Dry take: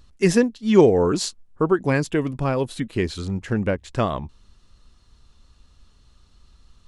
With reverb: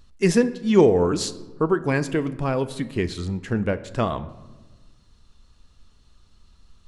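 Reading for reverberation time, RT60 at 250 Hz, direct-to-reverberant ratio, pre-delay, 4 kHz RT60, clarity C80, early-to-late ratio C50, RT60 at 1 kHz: 1.3 s, 1.8 s, 11.5 dB, 4 ms, 0.70 s, 17.5 dB, 15.5 dB, 1.2 s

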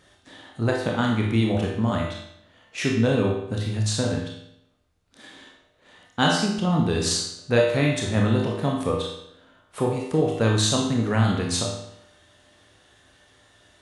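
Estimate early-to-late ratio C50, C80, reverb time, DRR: 2.5 dB, 6.0 dB, 0.75 s, -1.5 dB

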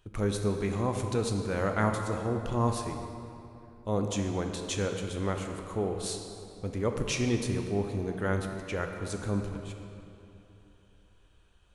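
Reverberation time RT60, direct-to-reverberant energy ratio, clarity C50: 3.0 s, 4.0 dB, 5.0 dB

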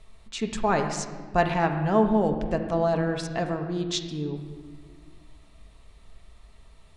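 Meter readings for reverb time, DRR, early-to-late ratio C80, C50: 1.5 s, 4.0 dB, 8.5 dB, 7.0 dB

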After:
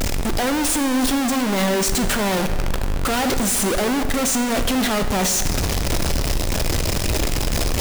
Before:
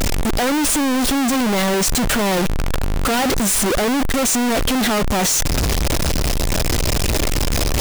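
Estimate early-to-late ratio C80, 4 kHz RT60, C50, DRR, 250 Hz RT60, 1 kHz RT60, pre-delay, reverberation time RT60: 10.0 dB, 1.3 s, 9.0 dB, 7.5 dB, 2.0 s, 1.8 s, 10 ms, 1.8 s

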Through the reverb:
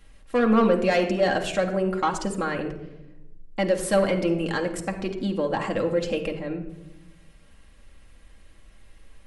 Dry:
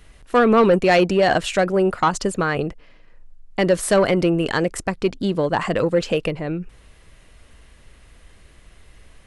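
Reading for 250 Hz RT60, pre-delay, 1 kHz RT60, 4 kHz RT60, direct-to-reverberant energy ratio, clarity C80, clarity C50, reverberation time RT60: 1.4 s, 4 ms, 0.80 s, 0.55 s, 1.5 dB, 12.0 dB, 9.5 dB, 1.0 s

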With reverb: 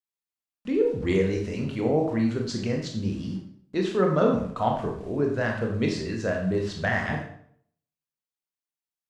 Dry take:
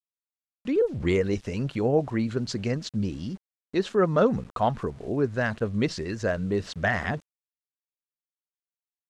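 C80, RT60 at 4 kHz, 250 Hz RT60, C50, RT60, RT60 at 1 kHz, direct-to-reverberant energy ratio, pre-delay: 8.5 dB, 0.50 s, 0.65 s, 5.5 dB, 0.60 s, 0.60 s, 0.5 dB, 21 ms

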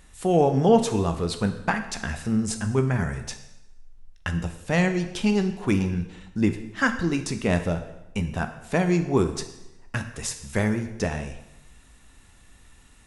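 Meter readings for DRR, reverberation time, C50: 7.0 dB, 0.90 s, 10.5 dB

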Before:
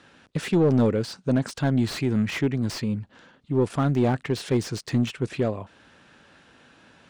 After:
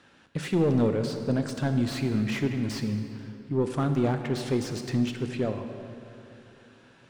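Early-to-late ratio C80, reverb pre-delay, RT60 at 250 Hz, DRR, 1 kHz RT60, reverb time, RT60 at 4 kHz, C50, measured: 7.5 dB, 24 ms, 3.1 s, 6.5 dB, 2.7 s, 2.8 s, 1.8 s, 7.0 dB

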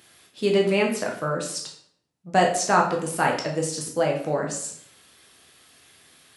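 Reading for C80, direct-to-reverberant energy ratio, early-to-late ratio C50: 10.0 dB, -0.5 dB, 7.0 dB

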